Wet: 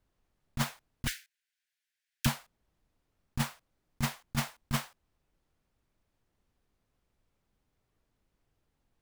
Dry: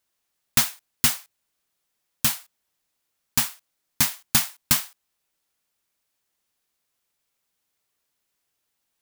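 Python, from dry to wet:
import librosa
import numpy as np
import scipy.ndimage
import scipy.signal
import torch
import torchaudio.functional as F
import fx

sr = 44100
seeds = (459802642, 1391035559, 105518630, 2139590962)

y = fx.steep_highpass(x, sr, hz=1500.0, slope=96, at=(1.07, 2.26))
y = fx.tilt_eq(y, sr, slope=-4.5)
y = fx.over_compress(y, sr, threshold_db=-24.0, ratio=-1.0)
y = F.gain(torch.from_numpy(y), -5.0).numpy()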